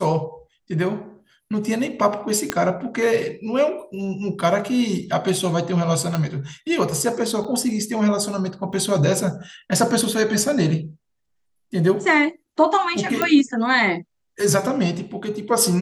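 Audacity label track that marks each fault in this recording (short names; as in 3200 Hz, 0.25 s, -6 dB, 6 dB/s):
2.500000	2.500000	pop -5 dBFS
6.150000	6.150000	pop -10 dBFS
7.440000	7.450000	gap 5.5 ms
8.730000	8.730000	gap 2.2 ms
13.220000	13.220000	pop -6 dBFS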